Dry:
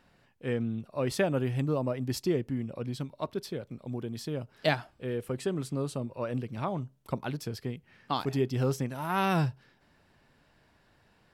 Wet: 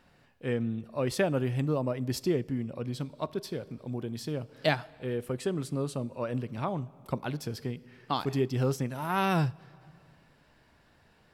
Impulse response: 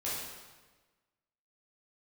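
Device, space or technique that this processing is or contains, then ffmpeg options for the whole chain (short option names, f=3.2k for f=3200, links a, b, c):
compressed reverb return: -filter_complex "[0:a]asplit=2[a][b];[1:a]atrim=start_sample=2205[c];[b][c]afir=irnorm=-1:irlink=0,acompressor=threshold=-40dB:ratio=4,volume=-11dB[d];[a][d]amix=inputs=2:normalize=0"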